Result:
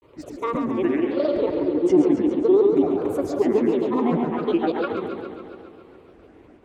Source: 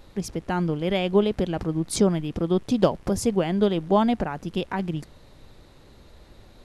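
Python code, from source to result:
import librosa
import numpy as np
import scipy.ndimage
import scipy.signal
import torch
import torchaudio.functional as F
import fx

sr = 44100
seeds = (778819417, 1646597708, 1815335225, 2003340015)

p1 = fx.rev_spring(x, sr, rt60_s=1.6, pass_ms=(54,), chirp_ms=40, drr_db=10.0)
p2 = fx.rider(p1, sr, range_db=3, speed_s=0.5)
p3 = p1 + (p2 * librosa.db_to_amplitude(-2.0))
p4 = scipy.signal.sosfilt(scipy.signal.butter(2, 120.0, 'highpass', fs=sr, output='sos'), p3)
p5 = fx.fixed_phaser(p4, sr, hz=890.0, stages=8)
p6 = fx.granulator(p5, sr, seeds[0], grain_ms=100.0, per_s=20.0, spray_ms=100.0, spread_st=7)
p7 = fx.lowpass(p6, sr, hz=1600.0, slope=6)
p8 = fx.peak_eq(p7, sr, hz=330.0, db=5.5, octaves=0.77)
p9 = p8 + fx.echo_single(p8, sr, ms=110, db=-11.5, dry=0)
p10 = fx.echo_warbled(p9, sr, ms=138, feedback_pct=68, rate_hz=2.8, cents=103, wet_db=-7.0)
y = p10 * librosa.db_to_amplitude(-1.5)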